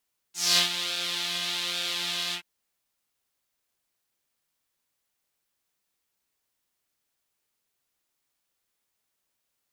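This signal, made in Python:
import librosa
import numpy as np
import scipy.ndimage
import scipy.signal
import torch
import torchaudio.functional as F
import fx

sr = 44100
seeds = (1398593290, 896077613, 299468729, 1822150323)

y = fx.sub_patch_pwm(sr, seeds[0], note=53, wave2='saw', interval_st=0, detune_cents=29, level2_db=-9.0, sub_db=-15.0, noise_db=-5.0, kind='bandpass', cutoff_hz=2400.0, q=2.9, env_oct=1.5, env_decay_s=0.27, env_sustain_pct=40, attack_ms=231.0, decay_s=0.11, sustain_db=-11.0, release_s=0.09, note_s=1.99, lfo_hz=1.2, width_pct=28, width_swing_pct=11)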